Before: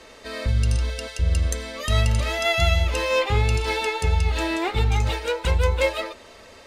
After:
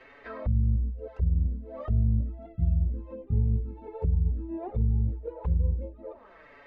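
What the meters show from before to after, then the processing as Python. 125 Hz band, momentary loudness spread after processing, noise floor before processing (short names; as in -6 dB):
-3.5 dB, 11 LU, -47 dBFS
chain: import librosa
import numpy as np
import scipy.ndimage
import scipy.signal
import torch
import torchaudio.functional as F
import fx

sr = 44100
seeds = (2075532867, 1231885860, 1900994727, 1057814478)

y = fx.env_flanger(x, sr, rest_ms=8.3, full_db=-16.5)
y = fx.envelope_lowpass(y, sr, base_hz=210.0, top_hz=2200.0, q=2.3, full_db=-22.0, direction='down')
y = y * 10.0 ** (-5.0 / 20.0)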